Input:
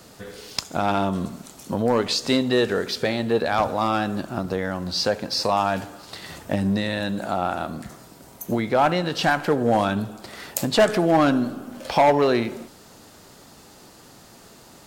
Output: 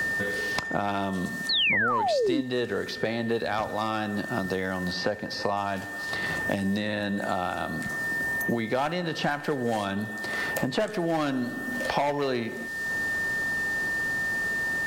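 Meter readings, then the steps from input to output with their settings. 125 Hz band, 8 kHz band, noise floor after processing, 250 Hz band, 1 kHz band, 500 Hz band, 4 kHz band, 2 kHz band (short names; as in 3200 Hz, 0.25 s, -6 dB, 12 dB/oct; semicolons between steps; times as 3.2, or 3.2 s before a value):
-5.5 dB, -6.0 dB, -36 dBFS, -5.5 dB, -6.0 dB, -6.5 dB, -3.0 dB, +4.5 dB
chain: whine 1800 Hz -35 dBFS; painted sound fall, 1.49–2.41, 260–4500 Hz -14 dBFS; three-band squash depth 100%; gain -7 dB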